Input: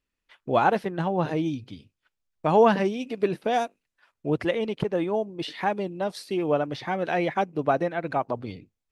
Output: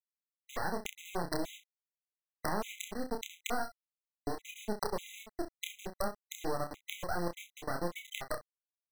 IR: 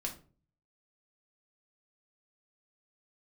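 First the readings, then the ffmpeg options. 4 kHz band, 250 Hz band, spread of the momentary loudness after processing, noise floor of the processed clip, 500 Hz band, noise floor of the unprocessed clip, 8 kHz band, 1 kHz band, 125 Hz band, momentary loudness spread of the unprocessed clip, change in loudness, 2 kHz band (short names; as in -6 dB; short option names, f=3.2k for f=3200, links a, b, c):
-5.5 dB, -14.0 dB, 6 LU, under -85 dBFS, -15.5 dB, -83 dBFS, n/a, -14.0 dB, -14.5 dB, 11 LU, -13.5 dB, -10.0 dB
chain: -filter_complex "[0:a]afftfilt=real='re*gte(hypot(re,im),0.224)':imag='im*gte(hypot(re,im),0.224)':win_size=1024:overlap=0.75,equalizer=f=1.5k:w=0.51:g=13,acrossover=split=280|980[a][b][c];[a]acompressor=threshold=-30dB:ratio=4[d];[b]acompressor=threshold=-27dB:ratio=4[e];[c]acompressor=threshold=-27dB:ratio=4[f];[d][e][f]amix=inputs=3:normalize=0,acrossover=split=150[g][h];[h]alimiter=limit=-21.5dB:level=0:latency=1:release=145[i];[g][i]amix=inputs=2:normalize=0,acompressor=threshold=-29dB:ratio=6,aresample=8000,aeval=exprs='max(val(0),0)':c=same,aresample=44100,aeval=exprs='0.075*(cos(1*acos(clip(val(0)/0.075,-1,1)))-cos(1*PI/2))+0.0335*(cos(3*acos(clip(val(0)/0.075,-1,1)))-cos(3*PI/2))+0.0133*(cos(6*acos(clip(val(0)/0.075,-1,1)))-cos(6*PI/2))':c=same,aeval=exprs='(mod(10.6*val(0)+1,2)-1)/10.6':c=same,acrusher=bits=6:mix=0:aa=0.000001,aecho=1:1:29|64:0.562|0.2,afftfilt=real='re*gt(sin(2*PI*1.7*pts/sr)*(1-2*mod(floor(b*sr/1024/2000),2)),0)':imag='im*gt(sin(2*PI*1.7*pts/sr)*(1-2*mod(floor(b*sr/1024/2000),2)),0)':win_size=1024:overlap=0.75,volume=3dB"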